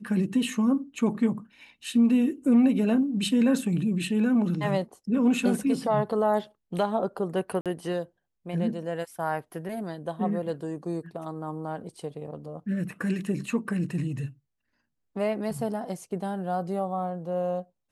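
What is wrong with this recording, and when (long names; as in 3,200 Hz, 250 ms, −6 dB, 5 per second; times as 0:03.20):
0:07.61–0:07.66: drop-out 47 ms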